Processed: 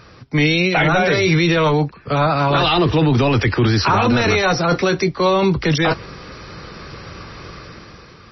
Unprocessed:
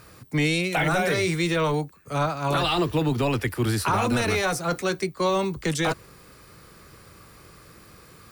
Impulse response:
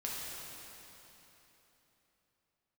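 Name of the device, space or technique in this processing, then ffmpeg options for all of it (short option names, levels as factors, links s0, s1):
low-bitrate web radio: -af "dynaudnorm=f=220:g=7:m=2.82,alimiter=limit=0.2:level=0:latency=1:release=18,volume=2.11" -ar 22050 -c:a libmp3lame -b:a 24k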